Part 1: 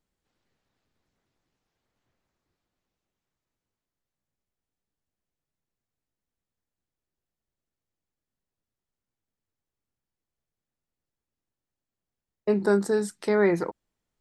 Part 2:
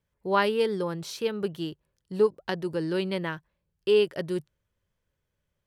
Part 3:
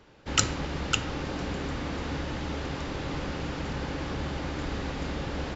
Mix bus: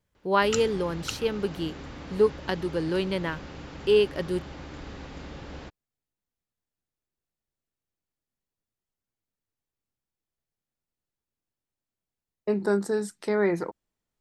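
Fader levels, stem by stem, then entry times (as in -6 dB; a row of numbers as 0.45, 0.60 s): -2.5, +1.0, -8.0 dB; 0.00, 0.00, 0.15 s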